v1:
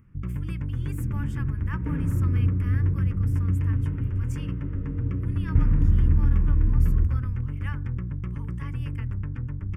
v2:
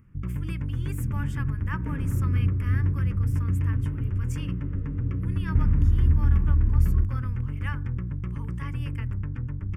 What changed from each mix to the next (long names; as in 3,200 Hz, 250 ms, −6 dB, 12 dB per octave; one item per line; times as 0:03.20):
speech +3.5 dB
second sound: send −11.5 dB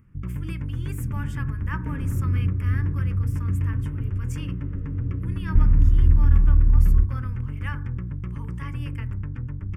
speech: send +7.5 dB
second sound: remove high-pass filter 57 Hz